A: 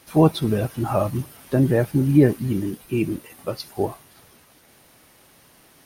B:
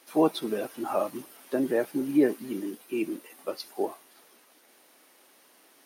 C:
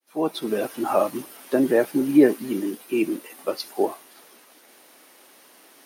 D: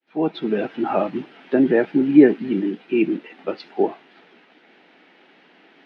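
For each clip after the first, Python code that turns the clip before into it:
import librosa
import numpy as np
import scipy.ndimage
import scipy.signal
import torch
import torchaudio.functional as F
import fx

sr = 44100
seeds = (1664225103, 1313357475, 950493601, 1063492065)

y1 = scipy.signal.sosfilt(scipy.signal.butter(4, 260.0, 'highpass', fs=sr, output='sos'), x)
y1 = y1 * librosa.db_to_amplitude(-5.0)
y2 = fx.fade_in_head(y1, sr, length_s=0.65)
y2 = y2 * librosa.db_to_amplitude(7.0)
y3 = fx.cabinet(y2, sr, low_hz=110.0, low_slope=12, high_hz=3100.0, hz=(180.0, 570.0, 1100.0), db=(7, -7, -10))
y3 = y3 * librosa.db_to_amplitude(4.0)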